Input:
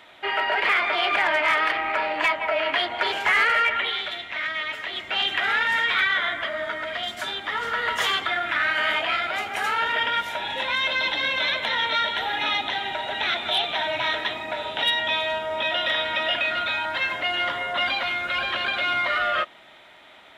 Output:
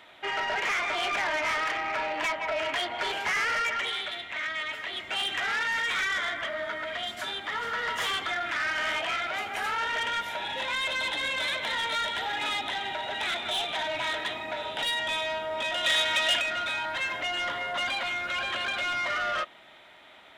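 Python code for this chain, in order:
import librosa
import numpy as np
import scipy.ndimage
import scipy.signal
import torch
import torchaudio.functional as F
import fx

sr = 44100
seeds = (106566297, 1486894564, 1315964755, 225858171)

y = 10.0 ** (-21.0 / 20.0) * np.tanh(x / 10.0 ** (-21.0 / 20.0))
y = fx.high_shelf(y, sr, hz=2100.0, db=10.0, at=(15.83, 16.4), fade=0.02)
y = y * 10.0 ** (-3.0 / 20.0)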